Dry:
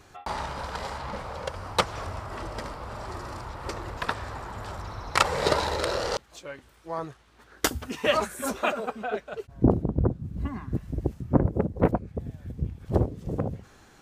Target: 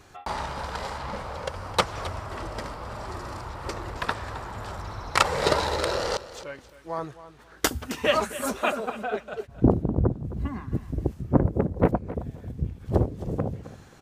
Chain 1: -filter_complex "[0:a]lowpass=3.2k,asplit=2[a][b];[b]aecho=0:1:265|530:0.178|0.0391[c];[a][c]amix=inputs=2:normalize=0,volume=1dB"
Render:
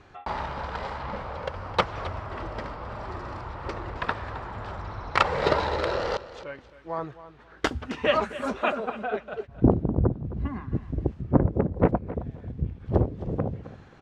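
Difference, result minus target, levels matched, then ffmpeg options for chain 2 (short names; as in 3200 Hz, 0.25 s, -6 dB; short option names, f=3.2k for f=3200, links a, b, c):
4000 Hz band -4.0 dB
-filter_complex "[0:a]asplit=2[a][b];[b]aecho=0:1:265|530:0.178|0.0391[c];[a][c]amix=inputs=2:normalize=0,volume=1dB"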